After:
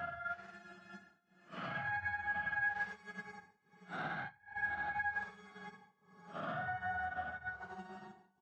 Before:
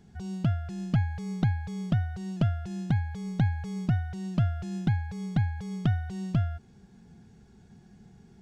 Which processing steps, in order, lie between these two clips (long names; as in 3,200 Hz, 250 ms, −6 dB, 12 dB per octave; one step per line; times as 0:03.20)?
dynamic equaliser 590 Hz, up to +6 dB, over −45 dBFS, Q 0.85
in parallel at −9.5 dB: soft clipping −26 dBFS, distortion −8 dB
on the sum: auto-filter band-pass sine 0.24 Hz 790–1,600 Hz
on a send: repeating echo 151 ms, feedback 51%, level −14 dB
on the sum: gate pattern "xxxx.x.xxx.x" 186 BPM −24 dB
extreme stretch with random phases 4.9×, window 0.10 s, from 0:00.60
brickwall limiter −40.5 dBFS, peak gain reduction 10.5 dB
low-shelf EQ 330 Hz −5 dB
expander for the loud parts 2.5 to 1, over −57 dBFS
level +14 dB